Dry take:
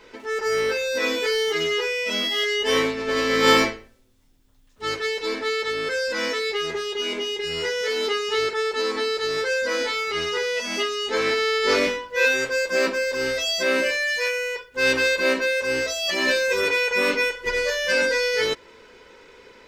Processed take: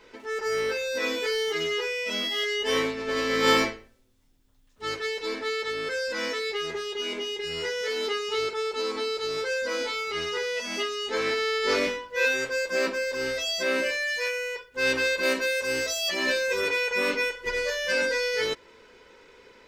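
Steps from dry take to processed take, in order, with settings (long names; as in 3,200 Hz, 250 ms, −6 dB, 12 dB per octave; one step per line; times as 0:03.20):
0:08.19–0:10.12: notch filter 1,800 Hz, Q 7
0:15.23–0:16.09: high-shelf EQ 6,000 Hz +9.5 dB
level −4.5 dB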